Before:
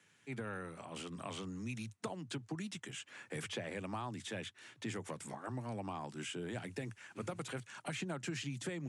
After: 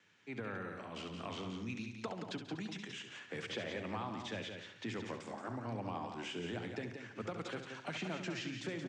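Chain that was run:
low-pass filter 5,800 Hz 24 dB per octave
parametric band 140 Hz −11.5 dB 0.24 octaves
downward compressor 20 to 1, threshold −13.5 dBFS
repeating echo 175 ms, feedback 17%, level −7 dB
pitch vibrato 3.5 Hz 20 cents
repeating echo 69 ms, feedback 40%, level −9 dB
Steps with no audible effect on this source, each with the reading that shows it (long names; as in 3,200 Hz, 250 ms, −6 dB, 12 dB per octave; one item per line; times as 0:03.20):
downward compressor, threshold −13.5 dBFS: peak of its input −26.5 dBFS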